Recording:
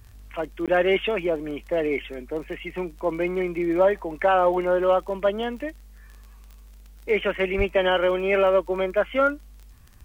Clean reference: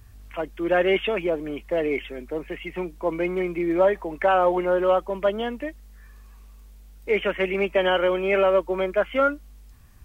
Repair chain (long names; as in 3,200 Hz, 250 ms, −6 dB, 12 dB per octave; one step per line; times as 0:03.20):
click removal
0:07.57–0:07.69: high-pass filter 140 Hz 24 dB per octave
repair the gap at 0:00.66, 17 ms